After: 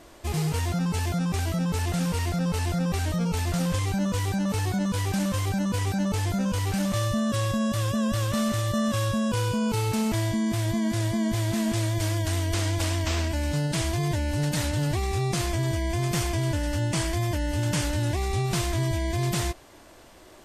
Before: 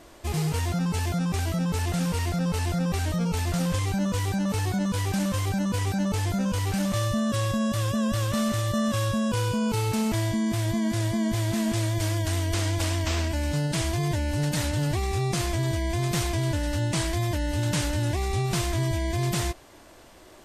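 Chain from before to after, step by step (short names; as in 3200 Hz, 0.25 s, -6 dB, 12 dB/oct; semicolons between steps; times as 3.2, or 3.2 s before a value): 15.5–17.85 notch 3900 Hz, Q 11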